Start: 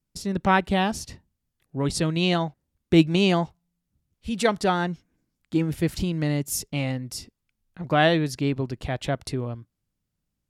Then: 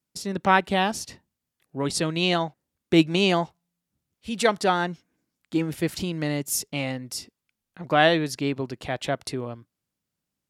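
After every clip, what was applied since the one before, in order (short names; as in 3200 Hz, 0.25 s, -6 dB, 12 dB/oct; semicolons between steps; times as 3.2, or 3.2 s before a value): HPF 300 Hz 6 dB/oct; gain +2 dB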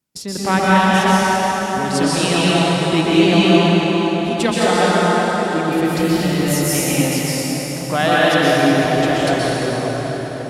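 in parallel at 0 dB: compressor, threshold -31 dBFS, peak gain reduction 17 dB; on the sum: reverb RT60 5.6 s, pre-delay 0.112 s, DRR -9 dB; gain -2 dB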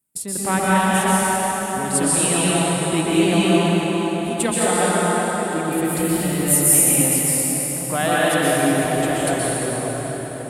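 resonant high shelf 7100 Hz +9 dB, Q 3; gain -4 dB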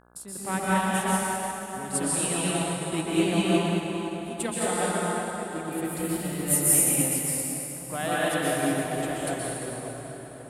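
buzz 60 Hz, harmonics 28, -47 dBFS -2 dB/oct; upward expander 1.5:1, over -26 dBFS; gain -5.5 dB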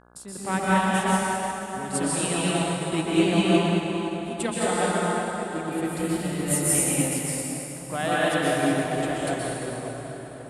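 LPF 7800 Hz 12 dB/oct; gain +3 dB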